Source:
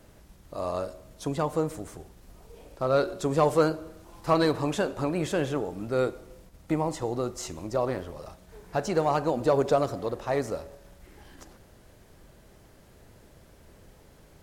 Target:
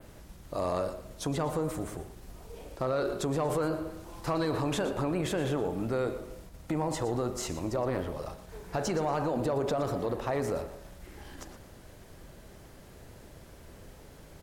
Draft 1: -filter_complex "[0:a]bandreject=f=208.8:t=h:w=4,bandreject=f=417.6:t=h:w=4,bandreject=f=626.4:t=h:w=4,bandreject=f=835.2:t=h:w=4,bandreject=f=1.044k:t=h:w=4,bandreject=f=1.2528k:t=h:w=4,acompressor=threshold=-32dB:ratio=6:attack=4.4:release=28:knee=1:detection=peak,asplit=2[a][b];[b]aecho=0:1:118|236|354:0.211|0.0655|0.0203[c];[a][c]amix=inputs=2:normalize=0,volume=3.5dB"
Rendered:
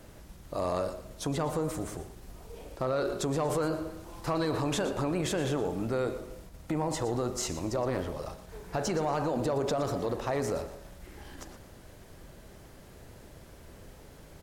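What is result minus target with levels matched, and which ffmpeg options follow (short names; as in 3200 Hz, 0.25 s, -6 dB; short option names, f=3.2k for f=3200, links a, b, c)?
8000 Hz band +3.0 dB
-filter_complex "[0:a]bandreject=f=208.8:t=h:w=4,bandreject=f=417.6:t=h:w=4,bandreject=f=626.4:t=h:w=4,bandreject=f=835.2:t=h:w=4,bandreject=f=1.044k:t=h:w=4,bandreject=f=1.2528k:t=h:w=4,acompressor=threshold=-32dB:ratio=6:attack=4.4:release=28:knee=1:detection=peak,adynamicequalizer=threshold=0.00112:dfrequency=6000:dqfactor=1:tfrequency=6000:tqfactor=1:attack=5:release=100:ratio=0.4:range=3:mode=cutabove:tftype=bell,asplit=2[a][b];[b]aecho=0:1:118|236|354:0.211|0.0655|0.0203[c];[a][c]amix=inputs=2:normalize=0,volume=3.5dB"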